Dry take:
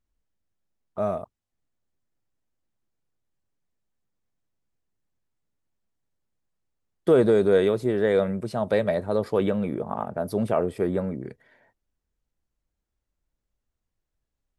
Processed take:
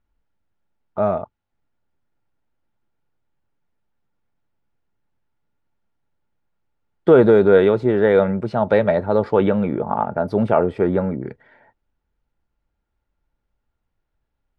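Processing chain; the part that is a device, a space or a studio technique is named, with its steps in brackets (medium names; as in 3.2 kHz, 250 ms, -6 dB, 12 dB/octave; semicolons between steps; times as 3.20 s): inside a cardboard box (low-pass 3 kHz 12 dB/octave; small resonant body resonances 870/1400 Hz, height 9 dB); trim +6.5 dB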